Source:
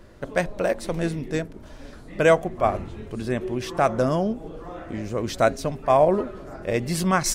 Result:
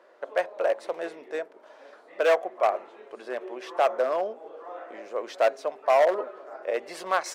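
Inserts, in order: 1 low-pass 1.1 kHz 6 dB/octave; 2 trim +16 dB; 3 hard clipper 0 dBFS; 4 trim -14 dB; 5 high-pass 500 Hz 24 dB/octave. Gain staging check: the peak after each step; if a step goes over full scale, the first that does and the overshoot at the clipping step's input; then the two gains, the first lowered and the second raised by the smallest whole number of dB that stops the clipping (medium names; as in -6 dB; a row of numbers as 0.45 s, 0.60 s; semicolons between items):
-7.5 dBFS, +8.5 dBFS, 0.0 dBFS, -14.0 dBFS, -10.5 dBFS; step 2, 8.5 dB; step 2 +7 dB, step 4 -5 dB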